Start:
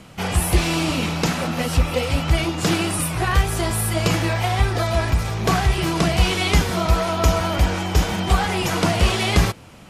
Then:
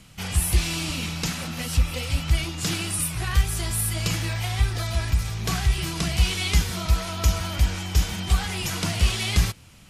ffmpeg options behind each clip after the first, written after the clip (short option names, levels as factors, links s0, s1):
-af "equalizer=f=550:w=0.33:g=-14"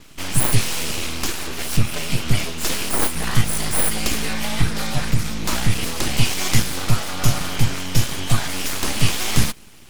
-af "adynamicequalizer=threshold=0.00708:dfrequency=9900:dqfactor=3.2:tfrequency=9900:tqfactor=3.2:attack=5:release=100:ratio=0.375:range=3:mode=boostabove:tftype=bell,aeval=exprs='abs(val(0))':c=same,volume=2"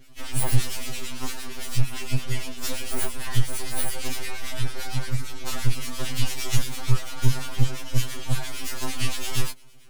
-filter_complex "[0:a]acrossover=split=1500[s0][s1];[s0]aeval=exprs='val(0)*(1-0.7/2+0.7/2*cos(2*PI*8.8*n/s))':c=same[s2];[s1]aeval=exprs='val(0)*(1-0.7/2-0.7/2*cos(2*PI*8.8*n/s))':c=same[s3];[s2][s3]amix=inputs=2:normalize=0,afftfilt=real='re*2.45*eq(mod(b,6),0)':imag='im*2.45*eq(mod(b,6),0)':win_size=2048:overlap=0.75,volume=0.708"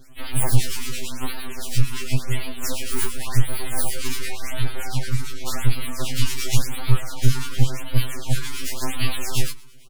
-af "aecho=1:1:130:0.0668,afftfilt=real='re*(1-between(b*sr/1024,600*pow(7000/600,0.5+0.5*sin(2*PI*0.91*pts/sr))/1.41,600*pow(7000/600,0.5+0.5*sin(2*PI*0.91*pts/sr))*1.41))':imag='im*(1-between(b*sr/1024,600*pow(7000/600,0.5+0.5*sin(2*PI*0.91*pts/sr))/1.41,600*pow(7000/600,0.5+0.5*sin(2*PI*0.91*pts/sr))*1.41))':win_size=1024:overlap=0.75,volume=1.41"